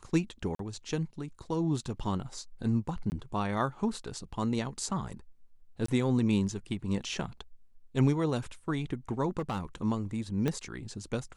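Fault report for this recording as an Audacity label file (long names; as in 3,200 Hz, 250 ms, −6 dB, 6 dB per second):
0.550000	0.590000	drop-out 43 ms
3.100000	3.120000	drop-out 19 ms
5.860000	5.880000	drop-out 24 ms
9.390000	9.750000	clipping −28 dBFS
10.480000	10.480000	click −17 dBFS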